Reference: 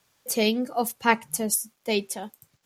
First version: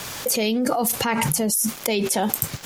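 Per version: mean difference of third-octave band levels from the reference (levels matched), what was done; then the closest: 9.5 dB: fast leveller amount 100%; gain -5.5 dB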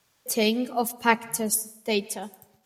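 2.5 dB: plate-style reverb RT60 0.84 s, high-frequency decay 0.6×, pre-delay 0.11 s, DRR 20 dB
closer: second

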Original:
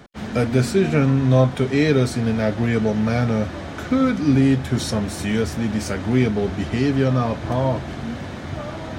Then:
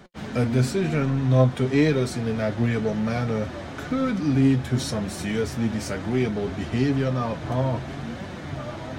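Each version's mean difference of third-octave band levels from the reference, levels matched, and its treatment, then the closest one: 1.0 dB: in parallel at -6.5 dB: hard clip -20 dBFS, distortion -7 dB; on the sum: flange 0.97 Hz, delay 5 ms, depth 3.7 ms, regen +54%; gain -2.5 dB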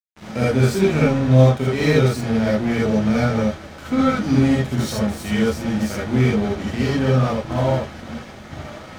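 4.5 dB: crossover distortion -30.5 dBFS; non-linear reverb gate 0.1 s rising, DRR -5.5 dB; gain -4 dB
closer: first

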